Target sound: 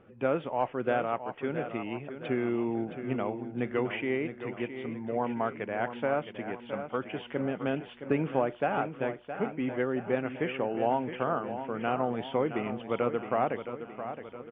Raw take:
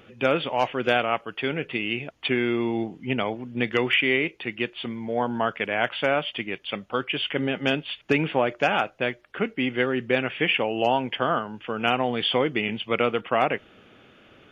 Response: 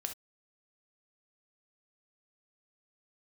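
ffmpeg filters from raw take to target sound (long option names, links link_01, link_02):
-af "lowpass=1300,aecho=1:1:667|1334|2001|2668|3335|4002:0.316|0.164|0.0855|0.0445|0.0231|0.012,volume=-5dB"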